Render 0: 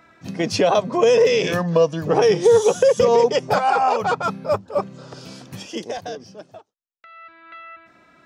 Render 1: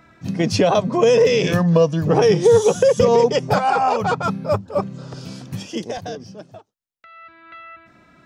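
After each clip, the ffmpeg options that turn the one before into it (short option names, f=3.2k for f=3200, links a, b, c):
-af "bass=f=250:g=9,treble=f=4k:g=1"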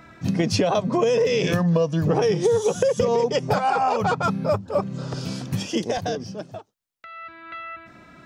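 -af "acompressor=threshold=-23dB:ratio=4,volume=4dB"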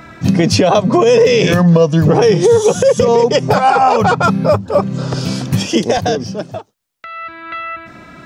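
-af "alimiter=level_in=12dB:limit=-1dB:release=50:level=0:latency=1,volume=-1dB"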